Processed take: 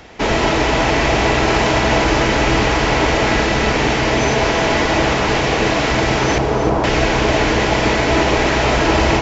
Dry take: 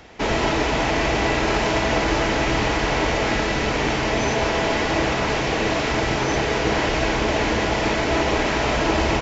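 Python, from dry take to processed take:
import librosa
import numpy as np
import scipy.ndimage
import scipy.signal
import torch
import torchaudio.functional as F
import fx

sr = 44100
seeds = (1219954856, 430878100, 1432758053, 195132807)

y = fx.steep_lowpass(x, sr, hz=1300.0, slope=36, at=(6.38, 6.84))
y = fx.echo_feedback(y, sr, ms=313, feedback_pct=55, wet_db=-10.0)
y = y * 10.0 ** (5.0 / 20.0)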